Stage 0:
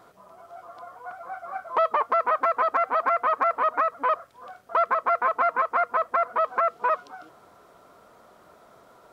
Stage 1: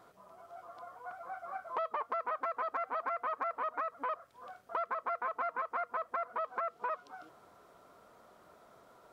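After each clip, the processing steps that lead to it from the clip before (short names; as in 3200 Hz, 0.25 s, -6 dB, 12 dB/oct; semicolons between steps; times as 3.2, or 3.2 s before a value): compressor 2:1, threshold -31 dBFS, peak gain reduction 7.5 dB; gain -6.5 dB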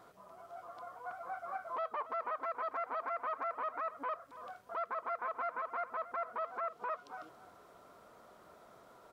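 limiter -31 dBFS, peak gain reduction 9 dB; outdoor echo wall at 48 m, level -15 dB; gain +1 dB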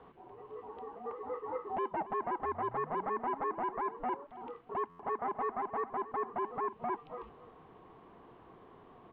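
painted sound rise, 2.43–4.27, 330–850 Hz -55 dBFS; mistuned SSB -260 Hz 300–3400 Hz; stuck buffer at 4.89, samples 512, times 8; gain +3 dB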